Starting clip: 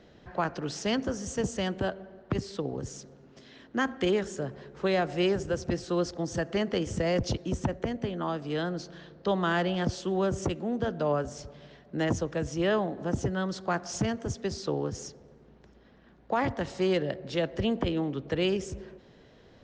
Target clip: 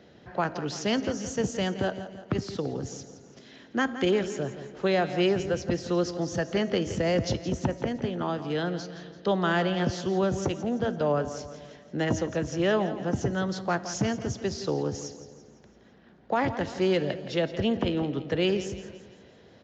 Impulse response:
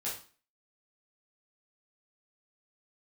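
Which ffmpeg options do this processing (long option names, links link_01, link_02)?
-filter_complex "[0:a]highpass=82,equalizer=frequency=1100:width=7.1:gain=-3.5,asplit=2[link_01][link_02];[link_02]aecho=0:1:169|338|507|676|845:0.224|0.105|0.0495|0.0232|0.0109[link_03];[link_01][link_03]amix=inputs=2:normalize=0,aresample=16000,aresample=44100,bandreject=frequency=316.8:width_type=h:width=4,bandreject=frequency=633.6:width_type=h:width=4,bandreject=frequency=950.4:width_type=h:width=4,bandreject=frequency=1267.2:width_type=h:width=4,bandreject=frequency=1584:width_type=h:width=4,bandreject=frequency=1900.8:width_type=h:width=4,bandreject=frequency=2217.6:width_type=h:width=4,bandreject=frequency=2534.4:width_type=h:width=4,bandreject=frequency=2851.2:width_type=h:width=4,bandreject=frequency=3168:width_type=h:width=4,bandreject=frequency=3484.8:width_type=h:width=4,bandreject=frequency=3801.6:width_type=h:width=4,bandreject=frequency=4118.4:width_type=h:width=4,bandreject=frequency=4435.2:width_type=h:width=4,bandreject=frequency=4752:width_type=h:width=4,bandreject=frequency=5068.8:width_type=h:width=4,bandreject=frequency=5385.6:width_type=h:width=4,bandreject=frequency=5702.4:width_type=h:width=4,bandreject=frequency=6019.2:width_type=h:width=4,bandreject=frequency=6336:width_type=h:width=4,bandreject=frequency=6652.8:width_type=h:width=4,bandreject=frequency=6969.6:width_type=h:width=4,bandreject=frequency=7286.4:width_type=h:width=4,bandreject=frequency=7603.2:width_type=h:width=4,bandreject=frequency=7920:width_type=h:width=4,bandreject=frequency=8236.8:width_type=h:width=4,bandreject=frequency=8553.6:width_type=h:width=4,bandreject=frequency=8870.4:width_type=h:width=4,bandreject=frequency=9187.2:width_type=h:width=4,bandreject=frequency=9504:width_type=h:width=4,bandreject=frequency=9820.8:width_type=h:width=4,bandreject=frequency=10137.6:width_type=h:width=4,bandreject=frequency=10454.4:width_type=h:width=4,bandreject=frequency=10771.2:width_type=h:width=4,bandreject=frequency=11088:width_type=h:width=4,bandreject=frequency=11404.8:width_type=h:width=4,bandreject=frequency=11721.6:width_type=h:width=4,volume=2dB"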